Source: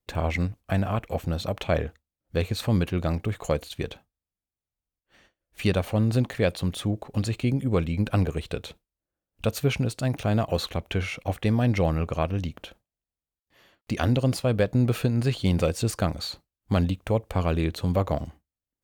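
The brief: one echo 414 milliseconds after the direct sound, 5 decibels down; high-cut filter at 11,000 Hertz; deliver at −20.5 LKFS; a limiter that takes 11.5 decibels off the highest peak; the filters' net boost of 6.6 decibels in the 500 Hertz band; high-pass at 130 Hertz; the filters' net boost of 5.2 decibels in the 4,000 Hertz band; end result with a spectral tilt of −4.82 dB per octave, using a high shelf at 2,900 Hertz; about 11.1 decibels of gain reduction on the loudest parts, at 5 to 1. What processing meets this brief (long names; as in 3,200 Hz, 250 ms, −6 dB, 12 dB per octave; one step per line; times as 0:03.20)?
high-pass filter 130 Hz
low-pass filter 11,000 Hz
parametric band 500 Hz +7.5 dB
high-shelf EQ 2,900 Hz +3.5 dB
parametric band 4,000 Hz +3.5 dB
downward compressor 5 to 1, threshold −26 dBFS
brickwall limiter −22.5 dBFS
single-tap delay 414 ms −5 dB
level +13.5 dB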